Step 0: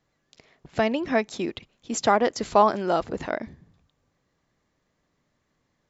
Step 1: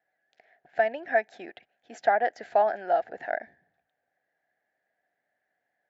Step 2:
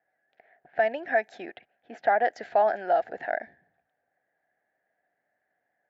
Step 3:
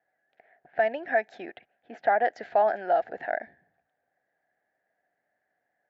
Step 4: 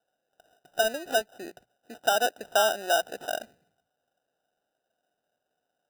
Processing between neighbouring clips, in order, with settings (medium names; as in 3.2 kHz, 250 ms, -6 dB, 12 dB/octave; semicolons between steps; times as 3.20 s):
two resonant band-passes 1.1 kHz, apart 1.2 oct; trim +5 dB
level-controlled noise filter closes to 2.1 kHz, open at -23.5 dBFS; in parallel at +3 dB: peak limiter -19 dBFS, peak gain reduction 8.5 dB; on the sum: trim -5 dB
distance through air 78 m
low-pass 1.1 kHz 12 dB/octave; hum notches 60/120/180 Hz; sample-and-hold 20×